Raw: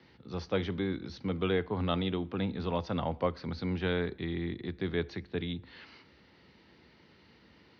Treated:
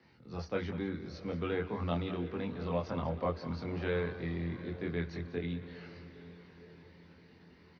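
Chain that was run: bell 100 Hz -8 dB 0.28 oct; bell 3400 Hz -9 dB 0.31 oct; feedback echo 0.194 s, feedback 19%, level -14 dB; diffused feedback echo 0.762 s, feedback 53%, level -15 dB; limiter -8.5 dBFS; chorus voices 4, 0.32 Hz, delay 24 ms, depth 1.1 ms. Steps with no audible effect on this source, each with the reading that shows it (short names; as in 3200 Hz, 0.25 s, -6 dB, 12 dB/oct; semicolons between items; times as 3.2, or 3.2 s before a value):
limiter -8.5 dBFS: input peak -15.5 dBFS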